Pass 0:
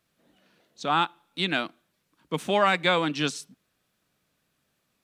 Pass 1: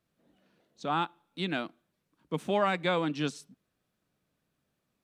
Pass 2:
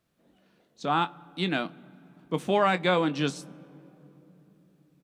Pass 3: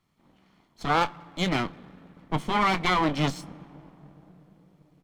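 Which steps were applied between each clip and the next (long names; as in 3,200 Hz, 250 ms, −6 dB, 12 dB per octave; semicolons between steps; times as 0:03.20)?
tilt shelving filter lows +4 dB; level −6 dB
double-tracking delay 22 ms −13 dB; on a send at −19.5 dB: convolution reverb RT60 3.6 s, pre-delay 3 ms; on the sum: level +4 dB
lower of the sound and its delayed copy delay 0.92 ms; high-shelf EQ 7,200 Hz −9 dB; level +4.5 dB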